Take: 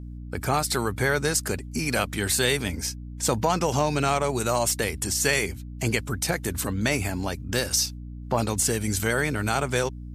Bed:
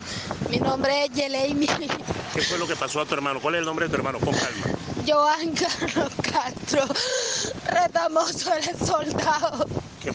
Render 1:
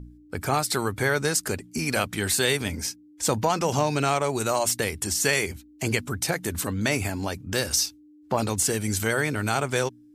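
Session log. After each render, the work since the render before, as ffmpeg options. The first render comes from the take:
-af "bandreject=f=60:t=h:w=4,bandreject=f=120:t=h:w=4,bandreject=f=180:t=h:w=4,bandreject=f=240:t=h:w=4"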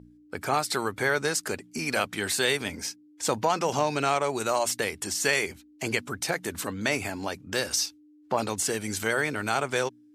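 -af "highpass=f=330:p=1,highshelf=f=7.6k:g=-8.5"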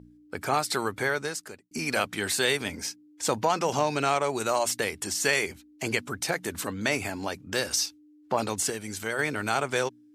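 -filter_complex "[0:a]asplit=4[a][b][c][d];[a]atrim=end=1.71,asetpts=PTS-STARTPTS,afade=t=out:st=0.93:d=0.78[e];[b]atrim=start=1.71:end=8.702,asetpts=PTS-STARTPTS,afade=t=in:d=0.004:c=hsin[f];[c]atrim=start=8.698:end=9.192,asetpts=PTS-STARTPTS,volume=-4.5dB[g];[d]atrim=start=9.188[h];[e][f]concat=n=2:v=0:a=1[i];[i][g]acrossfade=d=0.004:c1=hsin:c2=hsin[j];[j][h]acrossfade=d=0.004:c1=hsin:c2=hsin"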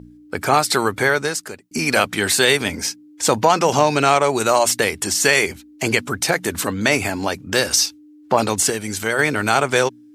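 -af "volume=10dB,alimiter=limit=-1dB:level=0:latency=1"

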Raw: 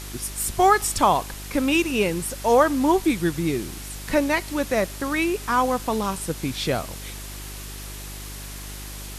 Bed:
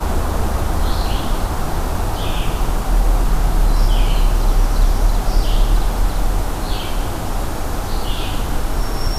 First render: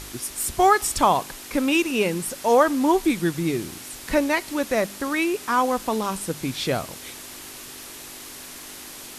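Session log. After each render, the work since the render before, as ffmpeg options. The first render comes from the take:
-af "bandreject=f=50:t=h:w=4,bandreject=f=100:t=h:w=4,bandreject=f=150:t=h:w=4,bandreject=f=200:t=h:w=4"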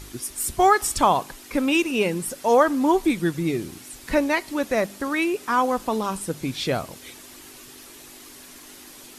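-af "afftdn=nr=7:nf=-40"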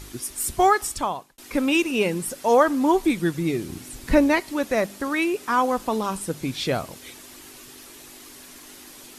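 -filter_complex "[0:a]asettb=1/sr,asplit=3[a][b][c];[a]atrim=end=3.694[d];[b]atrim=start=3.69:end=4.4,asetpts=PTS-STARTPTS,afade=t=in:d=0.004:c=qsin,afade=t=out:st=0.706:d=0.004:c=qsin,lowshelf=f=340:g=9.5[e];[c]atrim=start=4.396[f];[d][e]acrossfade=d=0.004:c1=hsin:c2=qsin[g];[g][f]acrossfade=d=0.004:c1=qsin:c2=hsin,asplit=2[h][i];[h]atrim=end=1.38,asetpts=PTS-STARTPTS,afade=t=out:st=0.6:d=0.78[j];[i]atrim=start=1.38,asetpts=PTS-STARTPTS,afade=t=in:d=0.004:c=hsin[k];[j][k]concat=n=2:v=0:a=1"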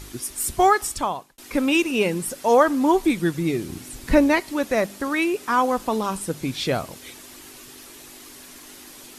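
-af "volume=1dB"

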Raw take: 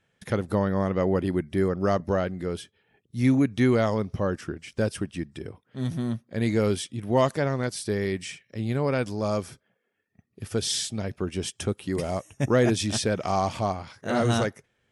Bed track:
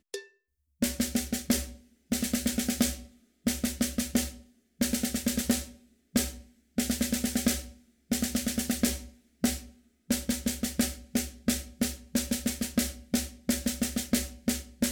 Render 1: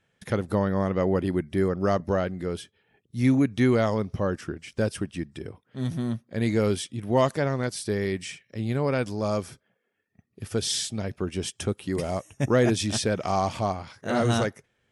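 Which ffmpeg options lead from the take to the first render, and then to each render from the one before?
-af anull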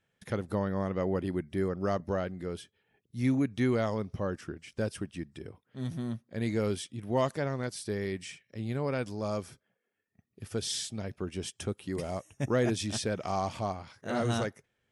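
-af "volume=-6.5dB"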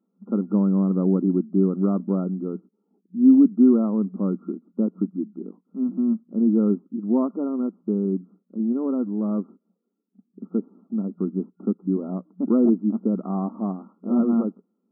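-af "afftfilt=real='re*between(b*sr/4096,180,1400)':imag='im*between(b*sr/4096,180,1400)':win_size=4096:overlap=0.75,lowshelf=f=400:t=q:w=1.5:g=12.5"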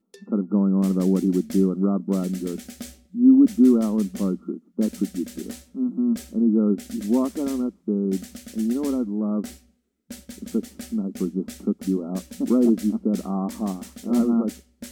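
-filter_complex "[1:a]volume=-10.5dB[a];[0:a][a]amix=inputs=2:normalize=0"

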